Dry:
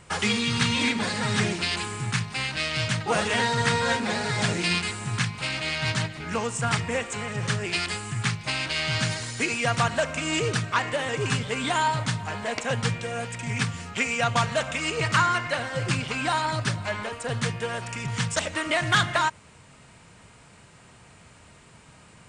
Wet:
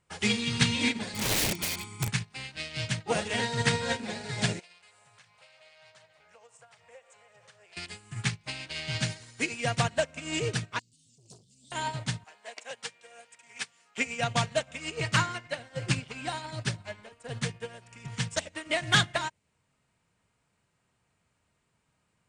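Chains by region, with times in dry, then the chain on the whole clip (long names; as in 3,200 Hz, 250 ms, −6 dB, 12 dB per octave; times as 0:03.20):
0:01.14–0:02.08: high-pass filter 78 Hz 24 dB per octave + comb filter 0.9 ms, depth 84% + wrap-around overflow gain 18.5 dB
0:04.59–0:07.77: low shelf with overshoot 400 Hz −12 dB, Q 3 + downward compressor 4 to 1, threshold −33 dBFS
0:10.79–0:11.72: elliptic band-stop filter 210–4,600 Hz, stop band 50 dB + spectral tilt +1.5 dB per octave + saturating transformer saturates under 1,100 Hz
0:12.24–0:13.98: high-pass filter 550 Hz + high-shelf EQ 5,400 Hz +3.5 dB
whole clip: dynamic equaliser 1,200 Hz, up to −8 dB, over −41 dBFS, Q 1.7; expander for the loud parts 2.5 to 1, over −38 dBFS; level +2.5 dB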